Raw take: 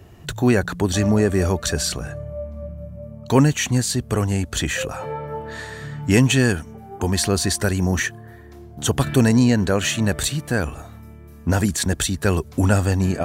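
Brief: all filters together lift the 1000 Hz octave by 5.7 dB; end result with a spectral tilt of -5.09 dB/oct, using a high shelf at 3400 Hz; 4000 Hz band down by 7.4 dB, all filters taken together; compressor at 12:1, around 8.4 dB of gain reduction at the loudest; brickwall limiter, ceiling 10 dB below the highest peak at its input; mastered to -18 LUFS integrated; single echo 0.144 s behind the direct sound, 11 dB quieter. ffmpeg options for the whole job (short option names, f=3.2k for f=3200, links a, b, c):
-af "equalizer=f=1k:t=o:g=8,highshelf=f=3.4k:g=-4.5,equalizer=f=4k:t=o:g=-7,acompressor=threshold=-18dB:ratio=12,alimiter=limit=-18dB:level=0:latency=1,aecho=1:1:144:0.282,volume=10.5dB"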